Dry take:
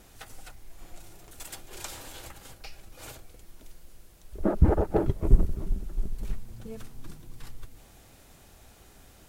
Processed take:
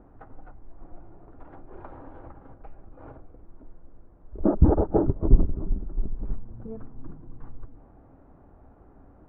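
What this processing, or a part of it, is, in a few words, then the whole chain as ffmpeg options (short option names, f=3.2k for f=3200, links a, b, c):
under water: -af "lowpass=f=1.2k:w=0.5412,lowpass=f=1.2k:w=1.3066,equalizer=f=280:t=o:w=0.34:g=7,volume=2dB"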